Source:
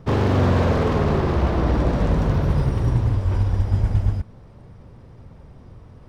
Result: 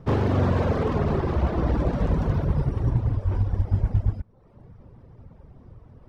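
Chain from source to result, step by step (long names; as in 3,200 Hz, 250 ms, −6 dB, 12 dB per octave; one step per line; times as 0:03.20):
reverb reduction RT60 0.75 s
high-shelf EQ 2,200 Hz −6 dB, from 0:02.44 −11 dB
level −1.5 dB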